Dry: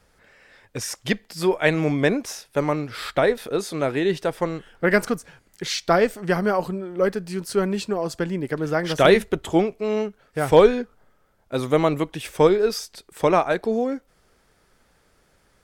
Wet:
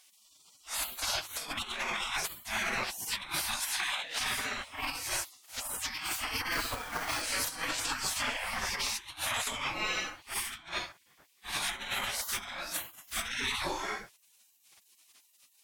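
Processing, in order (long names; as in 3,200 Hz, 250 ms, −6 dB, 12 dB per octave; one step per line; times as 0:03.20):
random phases in long frames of 200 ms
gate on every frequency bin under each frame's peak −25 dB weak
0:03.60–0:04.18: low-shelf EQ 240 Hz −12 dB
compressor whose output falls as the input rises −42 dBFS, ratio −0.5
0:06.52–0:07.22: log-companded quantiser 4 bits
level +8 dB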